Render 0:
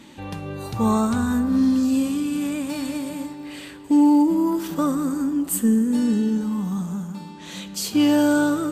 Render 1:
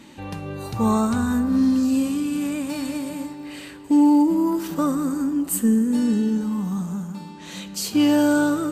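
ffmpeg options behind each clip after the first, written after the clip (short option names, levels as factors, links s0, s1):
-af "bandreject=f=3400:w=17"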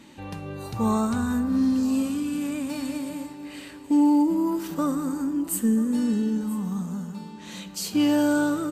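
-af "aecho=1:1:983:0.119,volume=0.668"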